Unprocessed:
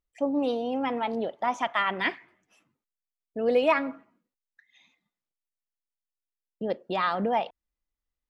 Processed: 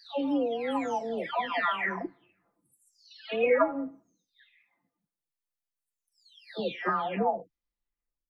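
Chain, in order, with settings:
every frequency bin delayed by itself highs early, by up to 831 ms

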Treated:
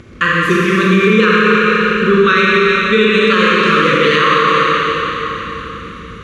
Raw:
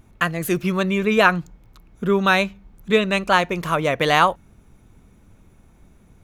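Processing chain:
elliptic band-stop filter 510–1,100 Hz, stop band 40 dB
noise gate −50 dBFS, range −8 dB
high-pass filter 49 Hz 24 dB per octave
bass and treble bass −7 dB, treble 0 dB
in parallel at −2.5 dB: upward compression, threshold −24 dBFS
on the sum: high-frequency loss of the air 120 metres
four-comb reverb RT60 3.9 s, combs from 29 ms, DRR −6 dB
boost into a limiter +4.5 dB
level −1 dB

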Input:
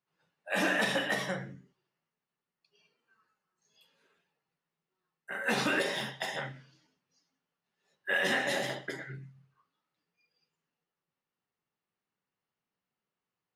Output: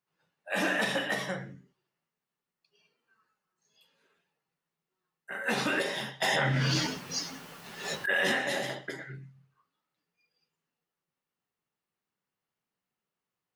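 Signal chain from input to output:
0:06.22–0:08.32: envelope flattener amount 100%

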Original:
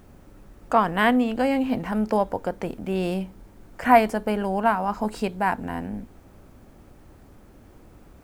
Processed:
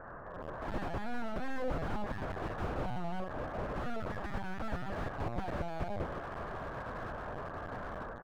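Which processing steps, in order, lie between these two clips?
ceiling on every frequency bin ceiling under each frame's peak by 20 dB
Chebyshev band-pass filter 160–890 Hz, order 5
pitch shifter +11.5 semitones
automatic gain control gain up to 7.5 dB
brickwall limiter −12.5 dBFS, peak gain reduction 9.5 dB
downward compressor 3 to 1, threshold −31 dBFS, peak gain reduction 10.5 dB
harmonic generator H 2 −19 dB, 5 −10 dB, 6 −13 dB, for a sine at −17 dBFS
harmonic and percussive parts rebalanced percussive −6 dB
high-frequency loss of the air 350 metres
repeating echo 730 ms, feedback 52%, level −20.5 dB
linear-prediction vocoder at 8 kHz pitch kept
slew-rate limiting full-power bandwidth 11 Hz

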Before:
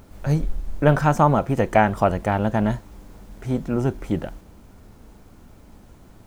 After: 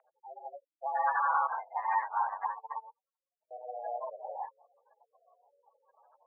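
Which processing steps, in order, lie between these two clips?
reverb whose tail is shaped and stops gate 220 ms rising, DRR −6.5 dB
brickwall limiter −9 dBFS, peak gain reduction 11 dB
gate on every frequency bin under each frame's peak −15 dB strong
single-sideband voice off tune +240 Hz 470–2,000 Hz
0:01.47–0:03.51: expander for the loud parts 2.5 to 1, over −36 dBFS
level −8.5 dB

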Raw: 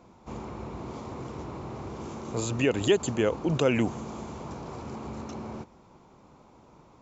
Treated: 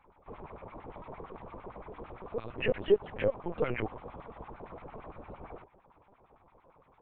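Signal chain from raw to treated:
auto-filter band-pass sine 8.8 Hz 410–2,200 Hz
linear-prediction vocoder at 8 kHz pitch kept
level +2 dB

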